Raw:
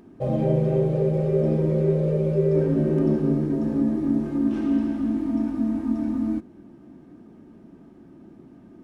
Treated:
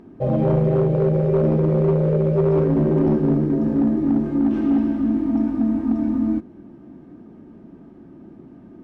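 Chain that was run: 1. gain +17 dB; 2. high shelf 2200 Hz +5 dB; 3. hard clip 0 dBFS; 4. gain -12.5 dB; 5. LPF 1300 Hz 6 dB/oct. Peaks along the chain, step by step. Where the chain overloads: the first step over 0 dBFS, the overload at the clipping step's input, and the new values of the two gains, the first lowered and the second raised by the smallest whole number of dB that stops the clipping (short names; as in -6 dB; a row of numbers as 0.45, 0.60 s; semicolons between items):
+7.5, +7.5, 0.0, -12.5, -12.5 dBFS; step 1, 7.5 dB; step 1 +9 dB, step 4 -4.5 dB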